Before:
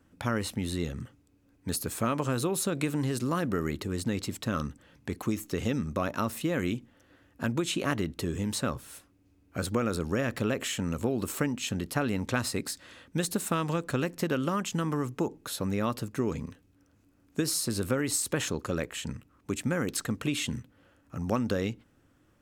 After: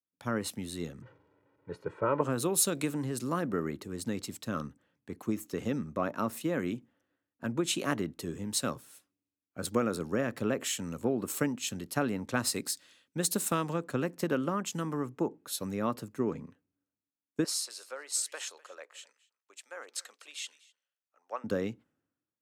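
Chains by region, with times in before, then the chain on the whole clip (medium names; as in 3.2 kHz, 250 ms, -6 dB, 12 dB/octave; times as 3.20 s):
1.02–2.21 s: jump at every zero crossing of -40.5 dBFS + band-pass 110–2000 Hz + comb 2.1 ms, depth 83%
17.44–21.44 s: high-pass 570 Hz 24 dB/octave + distance through air 53 m + delay 253 ms -15.5 dB
whole clip: high-pass 150 Hz 12 dB/octave; dynamic bell 2.9 kHz, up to -3 dB, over -49 dBFS, Q 0.78; three bands expanded up and down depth 100%; trim -2 dB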